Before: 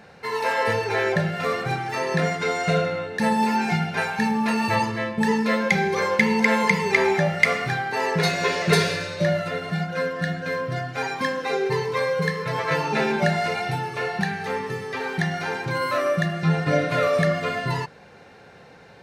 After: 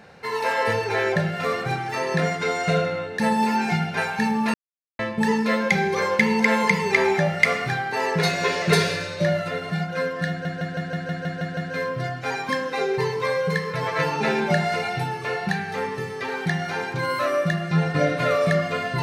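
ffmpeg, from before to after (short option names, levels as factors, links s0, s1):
-filter_complex "[0:a]asplit=11[s0][s1][s2][s3][s4][s5][s6][s7][s8][s9][s10];[s0]atrim=end=4.54,asetpts=PTS-STARTPTS,afade=t=out:st=4.536:d=0.004:c=hsin[s11];[s1]atrim=start=4.54:end=4.99,asetpts=PTS-STARTPTS,volume=0[s12];[s2]atrim=start=4.99:end=10.452,asetpts=PTS-STARTPTS,afade=t=in:d=0.004:c=hsin[s13];[s3]atrim=start=10.288:end=10.452[s14];[s4]atrim=start=10.288:end=10.452[s15];[s5]atrim=start=10.288:end=10.452[s16];[s6]atrim=start=10.288:end=10.452[s17];[s7]atrim=start=10.288:end=10.452[s18];[s8]atrim=start=10.288:end=10.452[s19];[s9]atrim=start=10.288:end=10.452[s20];[s10]atrim=start=10.288[s21];[s11][s12][s13]concat=n=3:v=0:a=1[s22];[s22][s14]acrossfade=d=0.004:c1=hsin:c2=hsin[s23];[s23][s15]acrossfade=d=0.004:c1=hsin:c2=hsin[s24];[s24][s16]acrossfade=d=0.004:c1=hsin:c2=hsin[s25];[s25][s17]acrossfade=d=0.004:c1=hsin:c2=hsin[s26];[s26][s18]acrossfade=d=0.004:c1=hsin:c2=hsin[s27];[s27][s19]acrossfade=d=0.004:c1=hsin:c2=hsin[s28];[s28][s20]acrossfade=d=0.004:c1=hsin:c2=hsin[s29];[s29][s21]acrossfade=d=0.004:c1=hsin:c2=hsin"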